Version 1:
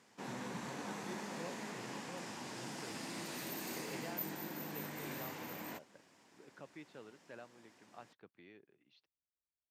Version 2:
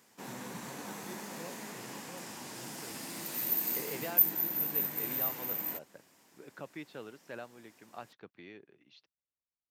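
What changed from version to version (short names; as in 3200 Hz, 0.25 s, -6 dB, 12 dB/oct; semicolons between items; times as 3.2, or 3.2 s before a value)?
second voice +8.0 dB; master: remove air absorption 63 m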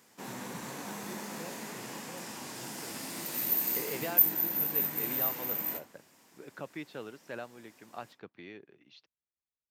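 second voice +3.0 dB; reverb: on, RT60 0.60 s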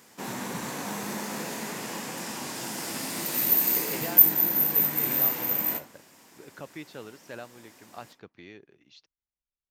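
second voice: remove BPF 120–3900 Hz; background +7.0 dB; master: remove HPF 55 Hz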